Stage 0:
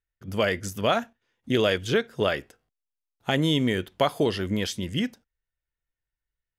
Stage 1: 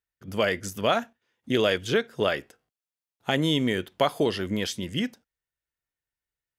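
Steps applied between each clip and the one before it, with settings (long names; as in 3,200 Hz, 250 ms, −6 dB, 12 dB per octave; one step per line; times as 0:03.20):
high-pass filter 130 Hz 6 dB per octave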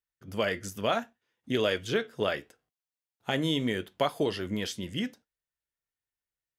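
flanger 0.72 Hz, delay 5.9 ms, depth 4.6 ms, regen −73%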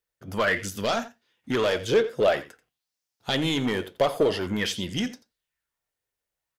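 soft clipping −25 dBFS, distortion −11 dB
single-tap delay 86 ms −16 dB
auto-filter bell 0.49 Hz 470–5,700 Hz +9 dB
level +5.5 dB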